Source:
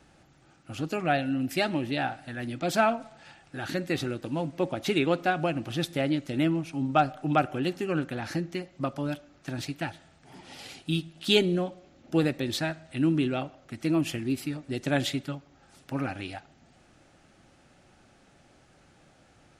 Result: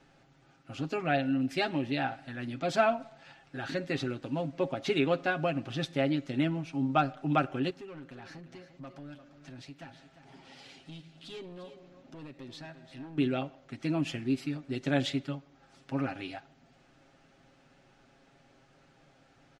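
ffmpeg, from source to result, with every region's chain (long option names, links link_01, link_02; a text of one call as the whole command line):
ffmpeg -i in.wav -filter_complex "[0:a]asettb=1/sr,asplit=3[link_01][link_02][link_03];[link_01]atrim=end=7.704[link_04];[link_02]atrim=start=7.7:end=13.18,asetpts=PTS-STARTPTS,afade=type=in:duration=0.004:curve=qsin,afade=type=out:start_time=5.476:duration=0.004:curve=qsin,acompressor=threshold=-48dB:ratio=2:attack=3.2:release=140:knee=1:detection=peak,asoftclip=type=hard:threshold=-38dB,aecho=1:1:348:0.251,atrim=end_sample=241668[link_05];[link_03]atrim=start=13.176[link_06];[link_04][link_05]acrossfade=duration=0.004:curve1=hsin:curve2=qsin[link_07];[link_07][link_06]acrossfade=duration=0.004:curve1=qsin:curve2=hsin,lowpass=5700,equalizer=frequency=86:width_type=o:width=0.65:gain=-9,aecho=1:1:7.4:0.5,volume=-3.5dB" out.wav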